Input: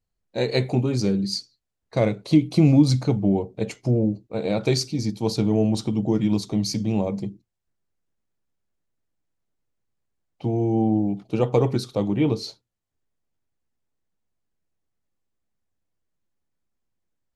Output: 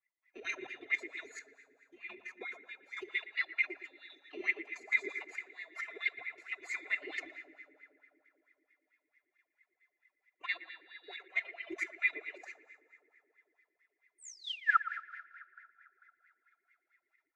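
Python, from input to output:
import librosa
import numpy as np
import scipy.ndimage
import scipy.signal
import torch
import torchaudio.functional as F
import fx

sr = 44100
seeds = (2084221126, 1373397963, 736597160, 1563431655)

y = fx.band_swap(x, sr, width_hz=2000)
y = fx.over_compress(y, sr, threshold_db=-26.0, ratio=-0.5)
y = fx.pitch_keep_formants(y, sr, semitones=9.0)
y = fx.level_steps(y, sr, step_db=14)
y = fx.spec_paint(y, sr, seeds[0], shape='fall', start_s=14.18, length_s=0.59, low_hz=1300.0, high_hz=9300.0, level_db=-25.0)
y = y + 0.8 * np.pad(y, (int(2.9 * sr / 1000.0), 0))[:len(y)]
y = fx.rev_fdn(y, sr, rt60_s=3.3, lf_ratio=1.0, hf_ratio=0.5, size_ms=11.0, drr_db=9.5)
y = fx.wah_lfo(y, sr, hz=4.5, low_hz=340.0, high_hz=2100.0, q=7.5)
y = fx.echo_wet_lowpass(y, sr, ms=116, feedback_pct=36, hz=2100.0, wet_db=-13)
y = F.gain(torch.from_numpy(y), 3.0).numpy()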